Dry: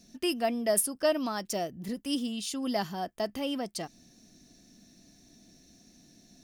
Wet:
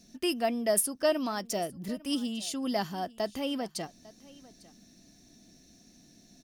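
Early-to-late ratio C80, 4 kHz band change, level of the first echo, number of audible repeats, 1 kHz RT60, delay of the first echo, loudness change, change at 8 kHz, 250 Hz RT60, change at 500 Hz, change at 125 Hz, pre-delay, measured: no reverb audible, 0.0 dB, −21.5 dB, 1, no reverb audible, 850 ms, 0.0 dB, 0.0 dB, no reverb audible, 0.0 dB, 0.0 dB, no reverb audible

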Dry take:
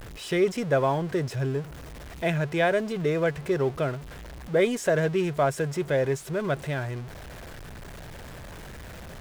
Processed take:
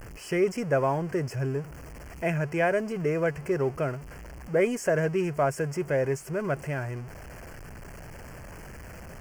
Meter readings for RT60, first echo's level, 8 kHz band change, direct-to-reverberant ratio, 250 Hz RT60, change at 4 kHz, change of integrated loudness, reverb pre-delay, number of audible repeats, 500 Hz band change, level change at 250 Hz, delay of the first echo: no reverb audible, no echo audible, −1.5 dB, no reverb audible, no reverb audible, −8.0 dB, −1.5 dB, no reverb audible, no echo audible, −1.5 dB, −1.5 dB, no echo audible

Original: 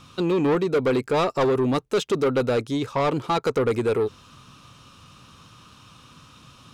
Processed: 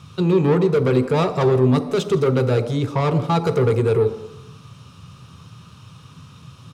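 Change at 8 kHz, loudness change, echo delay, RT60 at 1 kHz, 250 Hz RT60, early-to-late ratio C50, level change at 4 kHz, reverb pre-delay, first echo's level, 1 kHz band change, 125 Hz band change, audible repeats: can't be measured, +4.5 dB, 162 ms, 1.1 s, 0.80 s, 11.5 dB, +0.5 dB, 3 ms, −21.5 dB, +1.5 dB, +11.0 dB, 1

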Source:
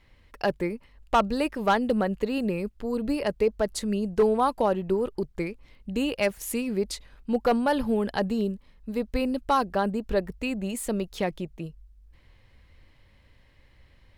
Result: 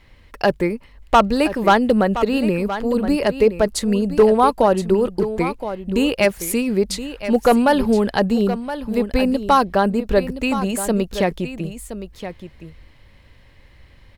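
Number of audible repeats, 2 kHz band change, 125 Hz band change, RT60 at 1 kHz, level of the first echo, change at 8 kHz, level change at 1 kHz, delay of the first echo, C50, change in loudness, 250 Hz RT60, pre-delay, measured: 1, +9.0 dB, +9.0 dB, no reverb audible, −11.5 dB, +9.0 dB, +9.0 dB, 1,020 ms, no reverb audible, +8.5 dB, no reverb audible, no reverb audible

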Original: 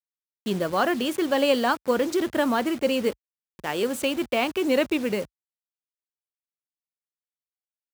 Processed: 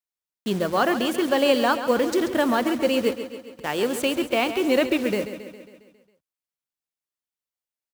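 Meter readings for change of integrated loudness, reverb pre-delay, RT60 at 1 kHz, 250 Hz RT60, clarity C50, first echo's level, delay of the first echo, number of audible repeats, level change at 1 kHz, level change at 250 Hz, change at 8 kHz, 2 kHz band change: +2.0 dB, no reverb audible, no reverb audible, no reverb audible, no reverb audible, −11.0 dB, 136 ms, 6, +2.0 dB, +2.0 dB, +2.0 dB, +2.0 dB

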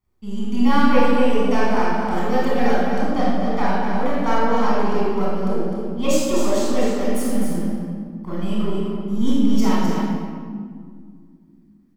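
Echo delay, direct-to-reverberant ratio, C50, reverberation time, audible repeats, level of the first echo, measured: 256 ms, −7.5 dB, −3.5 dB, 1.9 s, 1, −5.0 dB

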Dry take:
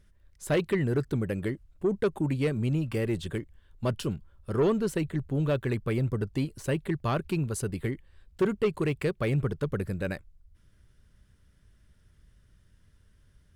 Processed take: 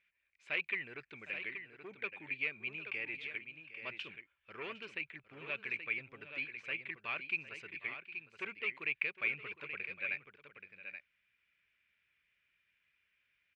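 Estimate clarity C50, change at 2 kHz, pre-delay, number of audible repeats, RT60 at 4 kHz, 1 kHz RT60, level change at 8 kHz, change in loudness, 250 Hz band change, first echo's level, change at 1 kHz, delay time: no reverb audible, +3.0 dB, no reverb audible, 2, no reverb audible, no reverb audible, below −25 dB, −10.0 dB, −26.5 dB, −16.0 dB, −13.0 dB, 759 ms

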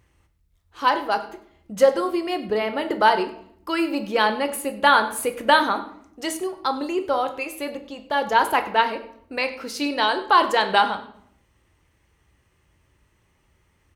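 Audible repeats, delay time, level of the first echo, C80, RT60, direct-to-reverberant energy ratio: 1, 99 ms, −18.5 dB, 14.5 dB, 0.70 s, 6.5 dB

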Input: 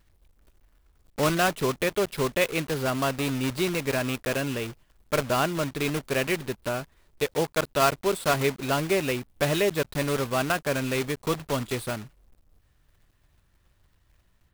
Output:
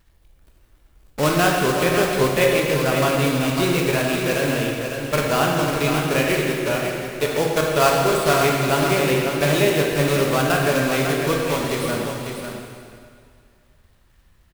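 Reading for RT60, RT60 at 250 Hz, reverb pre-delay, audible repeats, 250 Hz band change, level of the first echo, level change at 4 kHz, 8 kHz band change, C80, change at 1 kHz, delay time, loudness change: 2.1 s, 2.2 s, 8 ms, 1, +7.0 dB, −7.0 dB, +7.0 dB, +7.0 dB, 0.5 dB, +7.0 dB, 549 ms, +7.0 dB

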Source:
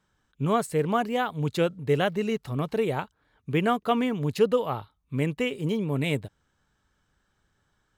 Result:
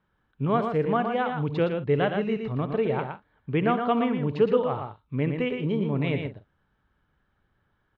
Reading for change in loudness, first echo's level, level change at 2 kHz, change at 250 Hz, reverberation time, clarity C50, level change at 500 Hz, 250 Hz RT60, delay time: +1.0 dB, −14.5 dB, −1.0 dB, +1.0 dB, no reverb audible, no reverb audible, +1.0 dB, no reverb audible, 64 ms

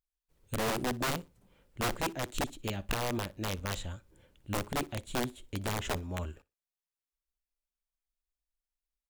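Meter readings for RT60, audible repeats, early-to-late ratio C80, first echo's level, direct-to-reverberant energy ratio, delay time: no reverb audible, 1, no reverb audible, −23.5 dB, no reverb audible, 60 ms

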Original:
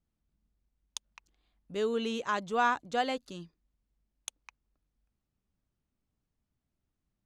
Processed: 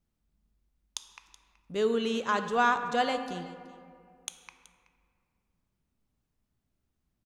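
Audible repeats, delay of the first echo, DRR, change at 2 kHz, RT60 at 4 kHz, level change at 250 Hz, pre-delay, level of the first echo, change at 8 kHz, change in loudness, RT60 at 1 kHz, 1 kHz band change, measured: 1, 376 ms, 7.5 dB, +3.5 dB, 1.1 s, +3.5 dB, 5 ms, −19.5 dB, +2.5 dB, +3.0 dB, 2.1 s, +3.0 dB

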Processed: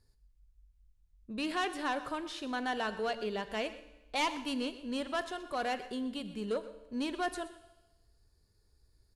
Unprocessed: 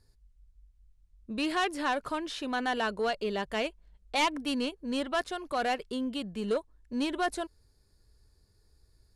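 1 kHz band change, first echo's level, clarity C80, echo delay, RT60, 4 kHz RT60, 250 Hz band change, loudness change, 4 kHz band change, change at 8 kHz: −4.0 dB, −16.0 dB, 13.0 dB, 124 ms, 1.1 s, 1.1 s, −4.0 dB, −4.0 dB, −4.0 dB, −4.0 dB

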